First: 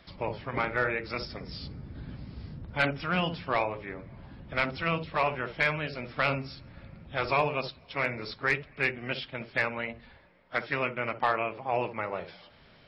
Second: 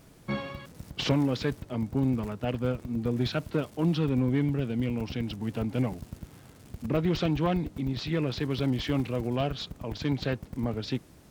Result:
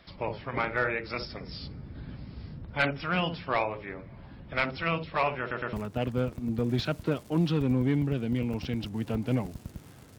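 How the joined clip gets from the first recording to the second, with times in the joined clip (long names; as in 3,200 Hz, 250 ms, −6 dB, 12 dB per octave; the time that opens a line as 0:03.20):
first
0:05.40: stutter in place 0.11 s, 3 plays
0:05.73: continue with second from 0:02.20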